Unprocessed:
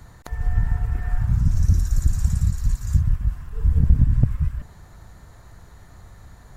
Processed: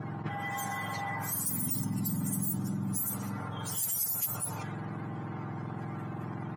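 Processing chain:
frequency axis turned over on the octave scale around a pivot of 1,200 Hz
comb filter 6.6 ms, depth 48%
echo through a band-pass that steps 397 ms, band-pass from 210 Hz, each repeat 1.4 octaves, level −11 dB
low-pass that shuts in the quiet parts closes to 1,100 Hz, open at −23.5 dBFS
envelope flattener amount 70%
level −6.5 dB

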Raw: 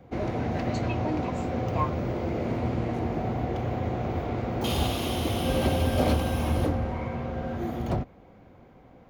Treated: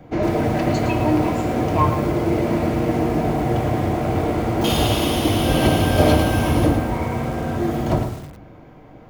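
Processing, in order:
notch filter 3,900 Hz, Q 28
hum removal 126.1 Hz, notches 28
convolution reverb RT60 0.70 s, pre-delay 3 ms, DRR 6 dB
feedback echo at a low word length 111 ms, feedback 35%, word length 7 bits, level −8.5 dB
level +8 dB

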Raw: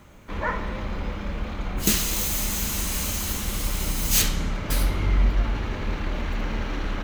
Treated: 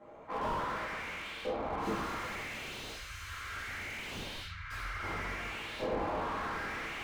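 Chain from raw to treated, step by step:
0:02.43–0:05.03: elliptic band-stop filter 110–1,500 Hz, stop band 40 dB
auto-filter band-pass saw up 0.69 Hz 550–4,000 Hz
rectangular room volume 100 cubic metres, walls mixed, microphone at 2.1 metres
slew-rate limiting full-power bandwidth 21 Hz

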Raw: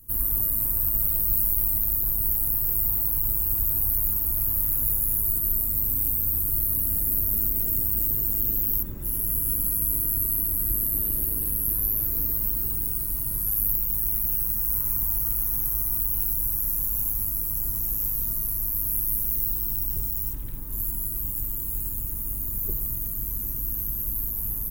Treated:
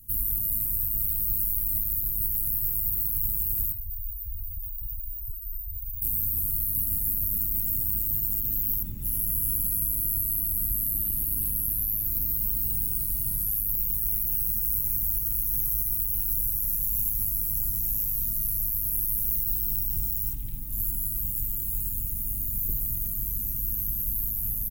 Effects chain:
flat-topped bell 760 Hz −12 dB 2.8 octaves
brickwall limiter −15 dBFS, peak gain reduction 7 dB
0:03.72–0:06.02: spectral peaks only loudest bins 8
slap from a distant wall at 55 metres, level −18 dB

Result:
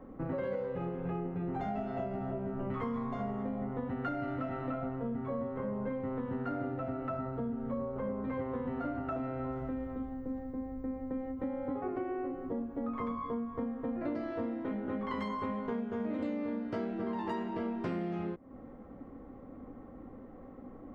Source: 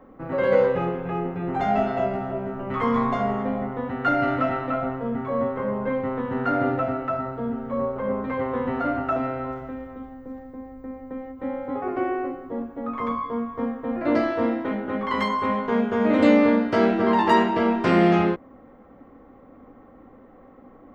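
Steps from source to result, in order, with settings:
low-shelf EQ 470 Hz +9.5 dB
downward compressor 12 to 1, threshold −26 dBFS, peak gain reduction 20.5 dB
level −6.5 dB

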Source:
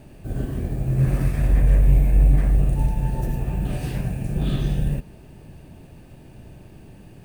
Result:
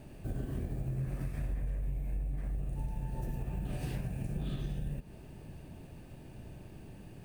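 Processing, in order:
downward compressor 10 to 1, threshold −27 dBFS, peak gain reduction 17 dB
level −5 dB

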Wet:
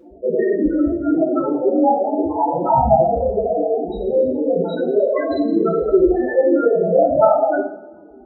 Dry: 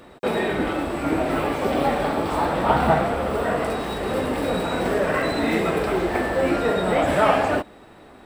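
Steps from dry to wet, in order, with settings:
spectral peaks only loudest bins 4
coupled-rooms reverb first 0.49 s, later 1.7 s, from −22 dB, DRR −4.5 dB
level +4 dB

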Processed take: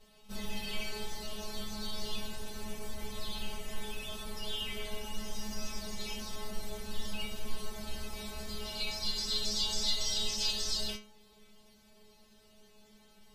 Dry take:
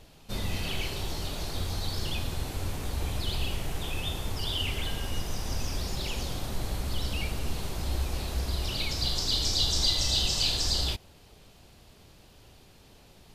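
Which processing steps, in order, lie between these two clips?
stiff-string resonator 210 Hz, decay 0.4 s, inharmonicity 0.002
level +8.5 dB

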